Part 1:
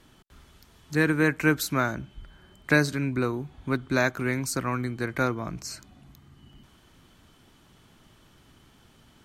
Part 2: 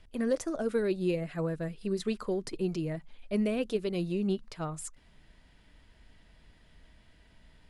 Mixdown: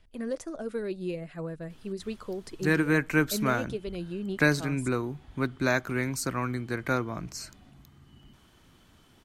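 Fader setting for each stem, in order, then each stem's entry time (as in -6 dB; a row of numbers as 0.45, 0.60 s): -2.0, -4.0 dB; 1.70, 0.00 s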